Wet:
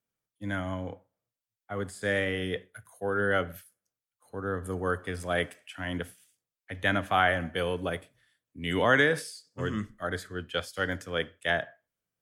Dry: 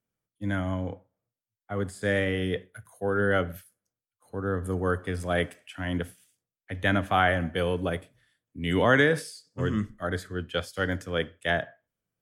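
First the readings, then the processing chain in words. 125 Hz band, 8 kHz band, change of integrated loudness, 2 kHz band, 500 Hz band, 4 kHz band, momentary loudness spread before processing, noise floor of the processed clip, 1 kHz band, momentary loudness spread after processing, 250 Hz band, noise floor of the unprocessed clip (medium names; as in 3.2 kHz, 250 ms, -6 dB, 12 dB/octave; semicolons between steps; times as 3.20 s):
-5.5 dB, 0.0 dB, -2.0 dB, -0.5 dB, -2.5 dB, 0.0 dB, 13 LU, under -85 dBFS, -1.0 dB, 15 LU, -4.5 dB, under -85 dBFS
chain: bass shelf 440 Hz -6 dB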